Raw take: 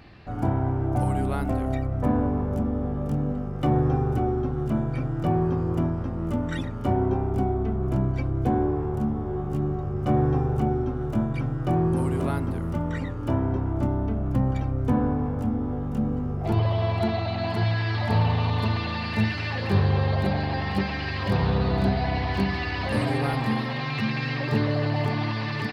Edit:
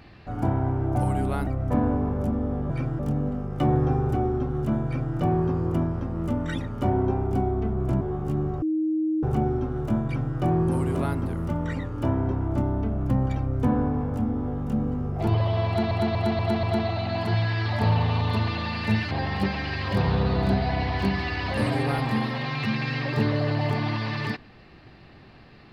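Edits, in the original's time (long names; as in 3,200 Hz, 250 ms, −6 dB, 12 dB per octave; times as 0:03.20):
0:01.47–0:01.79: remove
0:04.88–0:05.17: duplicate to 0:03.02
0:08.04–0:09.26: remove
0:09.87–0:10.48: beep over 314 Hz −21.5 dBFS
0:16.92: stutter 0.24 s, 5 plays
0:19.40–0:20.46: remove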